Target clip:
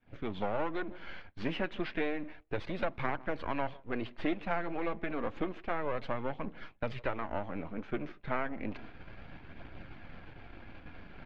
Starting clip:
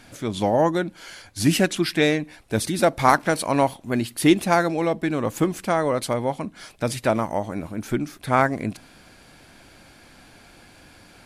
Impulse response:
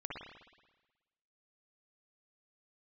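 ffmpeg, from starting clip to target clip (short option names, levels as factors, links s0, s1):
-filter_complex "[0:a]aeval=exprs='if(lt(val(0),0),0.251*val(0),val(0))':c=same,lowpass=f=2900:w=0.5412,lowpass=f=2900:w=1.3066,acrossover=split=330|1400[s0][s1][s2];[s0]acompressor=threshold=0.01:ratio=4[s3];[s1]acompressor=threshold=0.0282:ratio=4[s4];[s2]acompressor=threshold=0.0158:ratio=4[s5];[s3][s4][s5]amix=inputs=3:normalize=0,lowshelf=f=160:g=8,asplit=2[s6][s7];[s7]adelay=157,lowpass=f=1000:p=1,volume=0.0944,asplit=2[s8][s9];[s9]adelay=157,lowpass=f=1000:p=1,volume=0.4,asplit=2[s10][s11];[s11]adelay=157,lowpass=f=1000:p=1,volume=0.4[s12];[s6][s8][s10][s12]amix=inputs=4:normalize=0,areverse,acompressor=mode=upward:threshold=0.0282:ratio=2.5,areverse,flanger=delay=0:depth=5.5:regen=-57:speed=0.31:shape=triangular,agate=range=0.0224:threshold=0.01:ratio=3:detection=peak"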